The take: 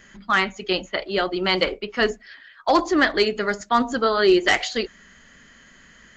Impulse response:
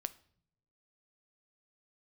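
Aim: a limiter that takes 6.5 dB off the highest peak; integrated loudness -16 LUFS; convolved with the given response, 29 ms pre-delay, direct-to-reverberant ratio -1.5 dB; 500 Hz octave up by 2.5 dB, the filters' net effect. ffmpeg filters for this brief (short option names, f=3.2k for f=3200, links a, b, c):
-filter_complex "[0:a]equalizer=f=500:t=o:g=3.5,alimiter=limit=-10dB:level=0:latency=1,asplit=2[a][b];[1:a]atrim=start_sample=2205,adelay=29[c];[b][c]afir=irnorm=-1:irlink=0,volume=3dB[d];[a][d]amix=inputs=2:normalize=0,volume=2.5dB"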